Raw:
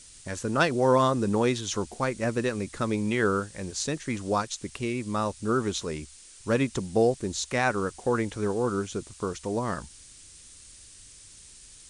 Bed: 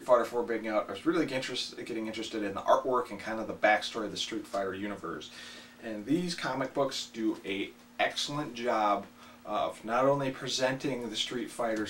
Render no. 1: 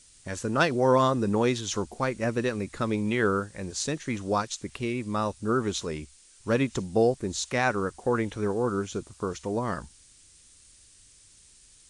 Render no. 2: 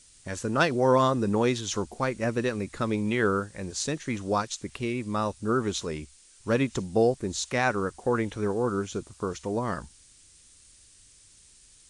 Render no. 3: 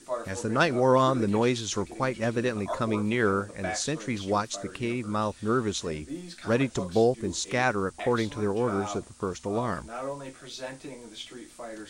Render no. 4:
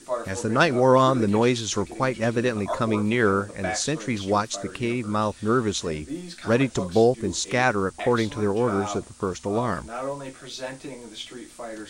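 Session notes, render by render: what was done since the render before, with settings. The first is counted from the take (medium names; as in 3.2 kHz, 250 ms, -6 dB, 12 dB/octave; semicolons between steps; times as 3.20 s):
noise print and reduce 6 dB
no audible change
add bed -8.5 dB
trim +4 dB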